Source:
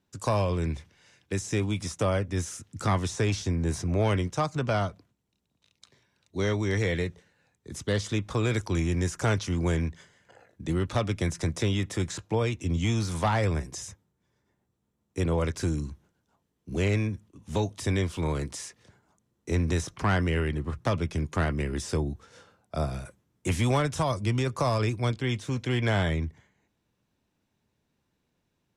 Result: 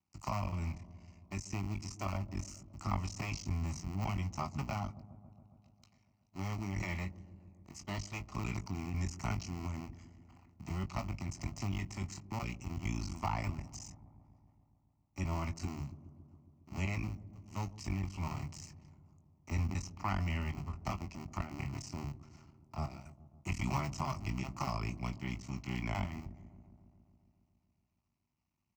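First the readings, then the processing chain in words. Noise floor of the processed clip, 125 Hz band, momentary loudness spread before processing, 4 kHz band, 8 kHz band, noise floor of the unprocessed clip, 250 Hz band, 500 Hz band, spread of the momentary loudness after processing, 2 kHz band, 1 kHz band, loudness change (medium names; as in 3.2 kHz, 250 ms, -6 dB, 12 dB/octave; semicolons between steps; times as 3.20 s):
-77 dBFS, -10.0 dB, 10 LU, -12.5 dB, -11.0 dB, -77 dBFS, -11.0 dB, -18.5 dB, 16 LU, -11.0 dB, -8.5 dB, -11.0 dB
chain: cycle switcher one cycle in 2, muted; high-pass 53 Hz; treble shelf 9.6 kHz -3.5 dB; static phaser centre 2.4 kHz, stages 8; doubling 21 ms -10 dB; on a send: feedback echo behind a low-pass 138 ms, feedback 73%, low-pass 530 Hz, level -14.5 dB; on the sum: trim -5.5 dB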